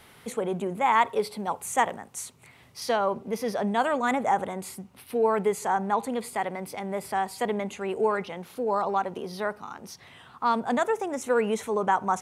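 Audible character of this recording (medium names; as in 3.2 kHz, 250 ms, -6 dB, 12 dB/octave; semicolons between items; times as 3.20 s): noise floor -54 dBFS; spectral tilt -4.5 dB/octave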